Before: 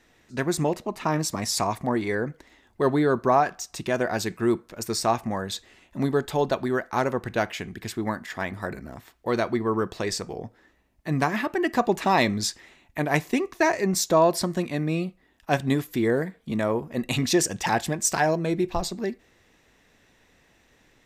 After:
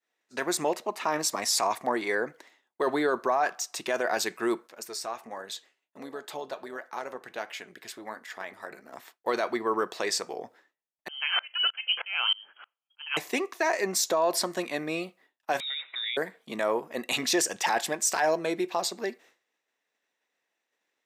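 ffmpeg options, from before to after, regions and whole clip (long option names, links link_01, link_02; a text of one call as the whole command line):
ffmpeg -i in.wav -filter_complex "[0:a]asettb=1/sr,asplit=3[link_01][link_02][link_03];[link_01]atrim=end=4.674[link_04];[link_02]atrim=start=4.67:end=8.93,asetpts=PTS-STARTPTS,afade=type=in:duration=0.004:curve=qsin,afade=type=out:start_time=4.256:duration=0.004:curve=qsin,acompressor=threshold=-28dB:ratio=2:attack=3.2:release=140:knee=1:detection=peak,flanger=delay=3.5:depth=4.1:regen=73:speed=1.4:shape=sinusoidal,tremolo=f=220:d=0.462[link_05];[link_03]atrim=start=8.926[link_06];[link_04][link_05]acrossfade=duration=0.004:curve1=hsin:curve2=qsin[link_07];[link_07][link_06]acrossfade=duration=0.004:curve1=qsin:curve2=hsin,asettb=1/sr,asplit=3[link_08][link_09][link_10];[link_08]atrim=end=11.084[link_11];[link_09]atrim=start=11.08:end=13.17,asetpts=PTS-STARTPTS,afade=type=in:duration=0.004:curve=qsin,afade=type=out:start_time=2.086:duration=0.004:curve=qsin,acontrast=24,lowpass=frequency=2800:width_type=q:width=0.5098,lowpass=frequency=2800:width_type=q:width=0.6013,lowpass=frequency=2800:width_type=q:width=0.9,lowpass=frequency=2800:width_type=q:width=2.563,afreqshift=-3300,aeval=exprs='val(0)*pow(10,-31*if(lt(mod(-3.2*n/s,1),2*abs(-3.2)/1000),1-mod(-3.2*n/s,1)/(2*abs(-3.2)/1000),(mod(-3.2*n/s,1)-2*abs(-3.2)/1000)/(1-2*abs(-3.2)/1000))/20)':channel_layout=same[link_12];[link_10]atrim=start=13.166[link_13];[link_11][link_12]acrossfade=duration=0.004:curve1=hsin:curve2=qsin[link_14];[link_14][link_13]acrossfade=duration=0.004:curve1=qsin:curve2=hsin,asettb=1/sr,asplit=3[link_15][link_16][link_17];[link_15]atrim=end=15.604[link_18];[link_16]atrim=start=15.6:end=16.17,asetpts=PTS-STARTPTS,afade=type=in:duration=0.004:curve=qsin,afade=type=out:start_time=0.566:duration=0.004:curve=qsin,equalizer=frequency=1600:width_type=o:width=0.65:gain=13,acompressor=threshold=-37dB:ratio=3:attack=3.2:release=140:knee=1:detection=peak,lowpass=frequency=3300:width_type=q:width=0.5098,lowpass=frequency=3300:width_type=q:width=0.6013,lowpass=frequency=3300:width_type=q:width=0.9,lowpass=frequency=3300:width_type=q:width=2.563,afreqshift=-3900[link_19];[link_17]atrim=start=16.166[link_20];[link_18][link_19]acrossfade=duration=0.004:curve1=hsin:curve2=qsin[link_21];[link_21][link_20]acrossfade=duration=0.004:curve1=qsin:curve2=hsin,agate=range=-33dB:threshold=-47dB:ratio=3:detection=peak,highpass=480,alimiter=limit=-18dB:level=0:latency=1:release=12,volume=2dB" out.wav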